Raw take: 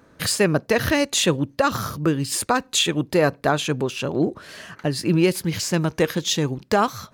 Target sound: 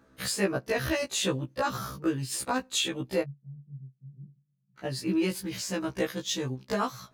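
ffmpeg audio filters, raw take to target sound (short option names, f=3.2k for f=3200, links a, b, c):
-filter_complex "[0:a]asplit=3[a][b][c];[a]afade=t=out:st=3.21:d=0.02[d];[b]asuperpass=centerf=150:order=4:qfactor=6.3,afade=t=in:st=3.21:d=0.02,afade=t=out:st=4.77:d=0.02[e];[c]afade=t=in:st=4.77:d=0.02[f];[d][e][f]amix=inputs=3:normalize=0,asettb=1/sr,asplit=3[g][h][i];[g]atrim=end=6.014[j];[h]atrim=start=6.01:end=6.59,asetpts=PTS-STARTPTS,afade=t=in:d=0.004:c=qsin,afade=t=out:st=0.576:d=0.004:c=qsin,agate=range=-33dB:threshold=-22dB:ratio=3:detection=peak[k];[i]atrim=start=6.586[l];[j][k]acrossfade=d=0.004:c1=hsin:c2=qsin[m];[m][l]acrossfade=d=0.004:c1=qsin:c2=hsin,afftfilt=real='re*1.73*eq(mod(b,3),0)':imag='im*1.73*eq(mod(b,3),0)':win_size=2048:overlap=0.75,volume=-6dB"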